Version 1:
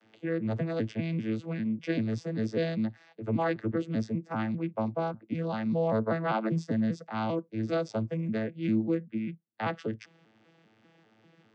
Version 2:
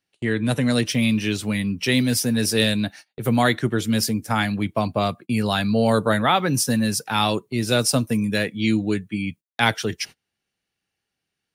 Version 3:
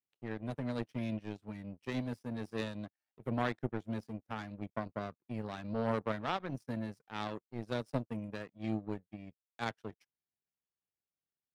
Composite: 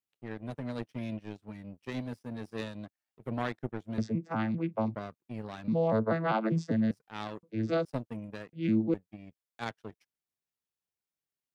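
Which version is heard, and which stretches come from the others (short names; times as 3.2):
3
3.98–4.95 from 1
5.68–6.91 from 1
7.43–7.85 from 1
8.53–8.94 from 1
not used: 2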